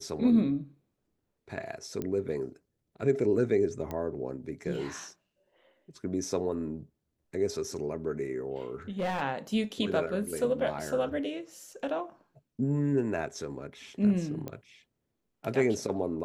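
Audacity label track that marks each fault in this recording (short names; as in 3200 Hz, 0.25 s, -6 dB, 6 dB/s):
2.020000	2.020000	pop -21 dBFS
3.910000	3.910000	pop -22 dBFS
8.990000	9.210000	clipped -26.5 dBFS
14.480000	14.480000	pop -23 dBFS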